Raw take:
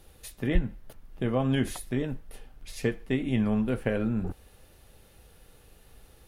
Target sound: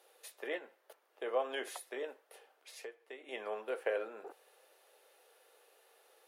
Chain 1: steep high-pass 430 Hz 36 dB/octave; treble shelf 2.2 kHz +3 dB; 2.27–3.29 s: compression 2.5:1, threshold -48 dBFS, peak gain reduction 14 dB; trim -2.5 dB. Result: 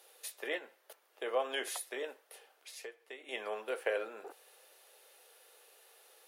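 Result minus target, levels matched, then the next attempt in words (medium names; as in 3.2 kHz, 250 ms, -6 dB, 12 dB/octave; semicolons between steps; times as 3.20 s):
4 kHz band +4.5 dB
steep high-pass 430 Hz 36 dB/octave; treble shelf 2.2 kHz -5.5 dB; 2.27–3.29 s: compression 2.5:1, threshold -48 dBFS, peak gain reduction 13.5 dB; trim -2.5 dB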